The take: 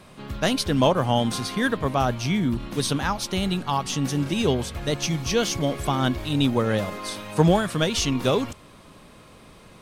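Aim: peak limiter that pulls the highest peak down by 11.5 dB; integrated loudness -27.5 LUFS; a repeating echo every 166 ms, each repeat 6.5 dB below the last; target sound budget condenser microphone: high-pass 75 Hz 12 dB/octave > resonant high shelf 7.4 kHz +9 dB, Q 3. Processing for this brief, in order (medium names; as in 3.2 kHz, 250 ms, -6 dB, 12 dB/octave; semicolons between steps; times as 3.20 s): peak limiter -18.5 dBFS; high-pass 75 Hz 12 dB/octave; resonant high shelf 7.4 kHz +9 dB, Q 3; feedback delay 166 ms, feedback 47%, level -6.5 dB; trim -1.5 dB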